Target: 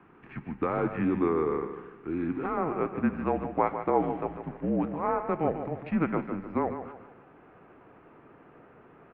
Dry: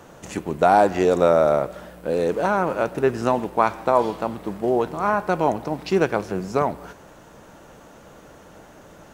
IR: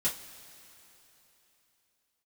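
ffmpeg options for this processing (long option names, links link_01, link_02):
-af "asetnsamples=nb_out_samples=441:pad=0,asendcmd='2.57 equalizer g -2.5',equalizer=frequency=760:width_type=o:width=0.47:gain=-15,aecho=1:1:149|298|447|596:0.335|0.127|0.0484|0.0184,highpass=frequency=310:width_type=q:width=0.5412,highpass=frequency=310:width_type=q:width=1.307,lowpass=frequency=2600:width_type=q:width=0.5176,lowpass=frequency=2600:width_type=q:width=0.7071,lowpass=frequency=2600:width_type=q:width=1.932,afreqshift=-170,volume=-6dB"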